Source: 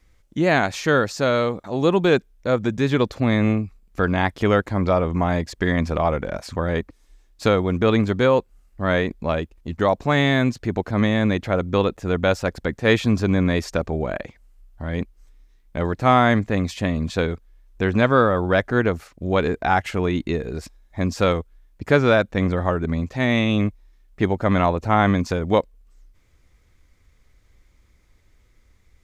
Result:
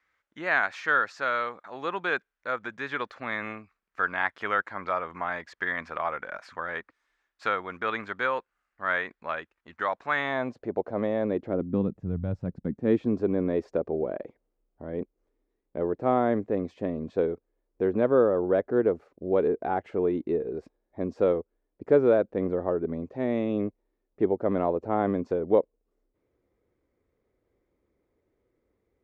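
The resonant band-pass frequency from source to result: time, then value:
resonant band-pass, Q 1.9
0:10.14 1,500 Hz
0:10.58 540 Hz
0:11.21 540 Hz
0:12.21 110 Hz
0:13.19 420 Hz

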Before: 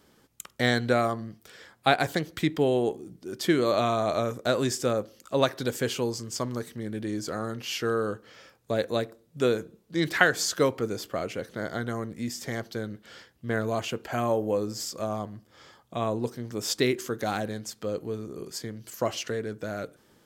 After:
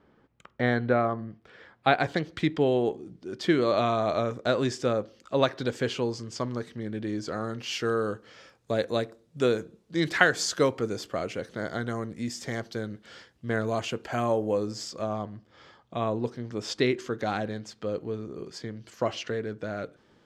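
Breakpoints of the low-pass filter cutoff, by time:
0:01.28 1,900 Hz
0:02.30 4,600 Hz
0:07.14 4,600 Hz
0:07.84 8,100 Hz
0:14.50 8,100 Hz
0:15.15 4,300 Hz

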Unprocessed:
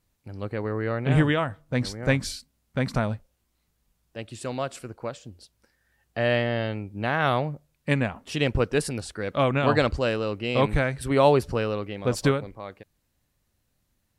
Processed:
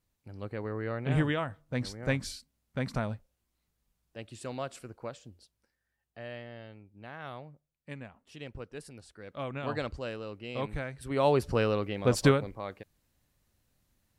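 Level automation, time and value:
0:05.23 −7 dB
0:06.31 −19.5 dB
0:08.79 −19.5 dB
0:09.73 −12.5 dB
0:10.96 −12.5 dB
0:11.61 −0.5 dB

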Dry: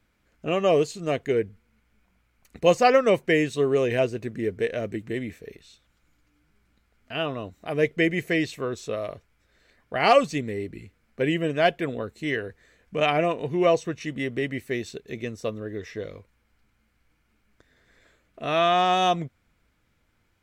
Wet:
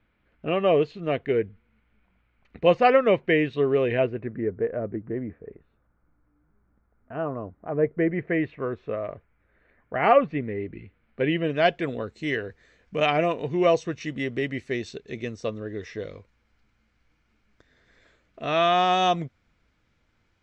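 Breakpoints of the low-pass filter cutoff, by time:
low-pass filter 24 dB per octave
0:03.87 3,300 Hz
0:04.63 1,400 Hz
0:07.86 1,400 Hz
0:08.52 2,200 Hz
0:10.32 2,200 Hz
0:11.36 3,800 Hz
0:11.81 6,600 Hz

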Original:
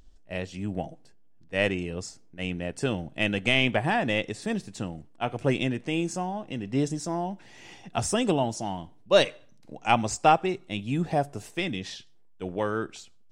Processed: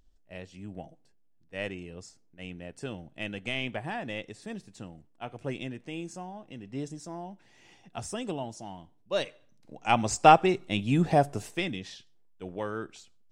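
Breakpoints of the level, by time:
0:09.24 −10 dB
0:09.83 −3.5 dB
0:10.30 +3 dB
0:11.35 +3 dB
0:11.89 −6 dB

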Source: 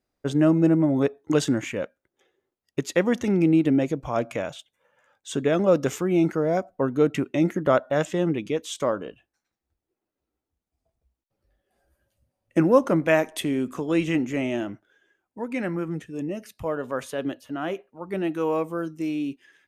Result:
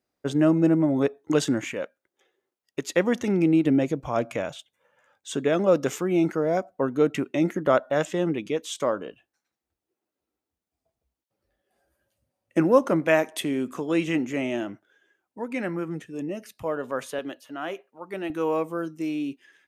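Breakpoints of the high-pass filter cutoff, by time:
high-pass filter 6 dB per octave
140 Hz
from 0:01.74 370 Hz
from 0:02.87 150 Hz
from 0:03.65 55 Hz
from 0:05.31 180 Hz
from 0:17.19 540 Hz
from 0:18.30 160 Hz

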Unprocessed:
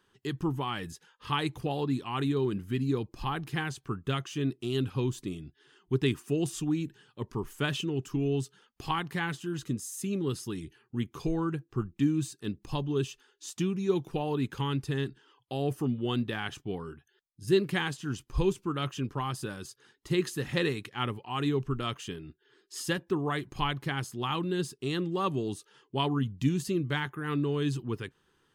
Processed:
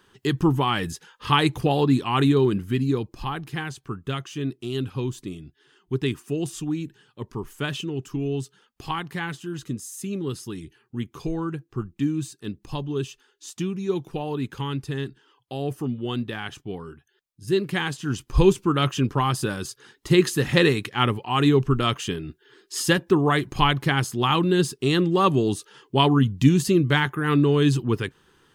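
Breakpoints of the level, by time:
0:02.25 +10.5 dB
0:03.44 +2 dB
0:17.55 +2 dB
0:18.44 +10.5 dB

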